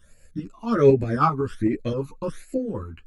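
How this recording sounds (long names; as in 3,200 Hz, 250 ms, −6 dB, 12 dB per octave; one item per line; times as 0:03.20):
phaser sweep stages 12, 1.3 Hz, lowest notch 540–1,100 Hz
tremolo saw up 7.8 Hz, depth 50%
a shimmering, thickened sound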